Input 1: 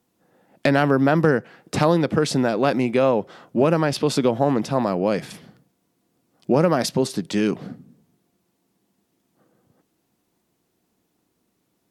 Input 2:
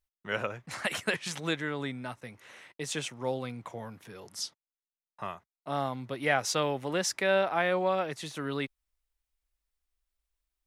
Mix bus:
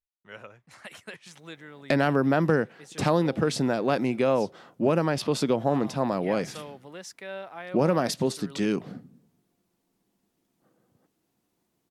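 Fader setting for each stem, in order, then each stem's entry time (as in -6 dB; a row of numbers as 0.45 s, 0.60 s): -5.0 dB, -12.0 dB; 1.25 s, 0.00 s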